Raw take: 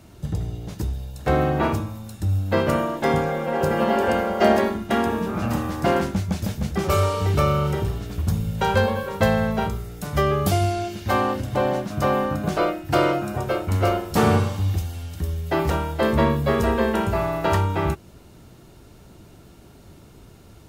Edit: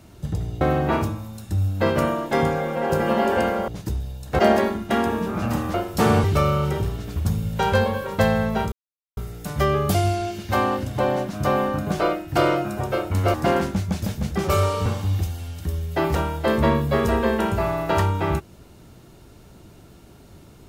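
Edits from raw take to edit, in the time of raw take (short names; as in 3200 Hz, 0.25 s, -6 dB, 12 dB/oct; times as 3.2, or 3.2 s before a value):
0.61–1.32 move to 4.39
5.74–7.26 swap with 13.91–14.41
9.74 insert silence 0.45 s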